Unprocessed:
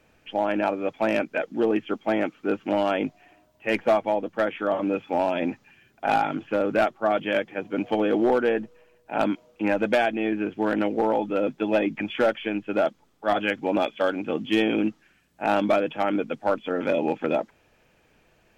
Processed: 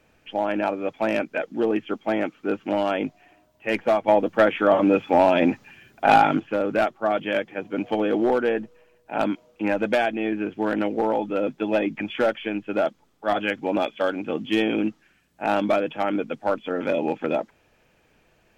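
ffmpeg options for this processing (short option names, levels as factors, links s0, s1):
-filter_complex "[0:a]asettb=1/sr,asplit=3[s0][s1][s2];[s0]atrim=end=4.084[s3];[s1]atrim=start=4.08:end=6.4,asetpts=PTS-STARTPTS,afade=t=in:d=0.004:c=qsin,afade=t=out:st=2.316:d=0.004:c=qsin,acontrast=87[s4];[s2]atrim=start=6.396[s5];[s3][s4]acrossfade=d=0.004:c1=hsin:c2=qsin[s6];[s6][s5]acrossfade=d=0.004:c1=qsin:c2=hsin"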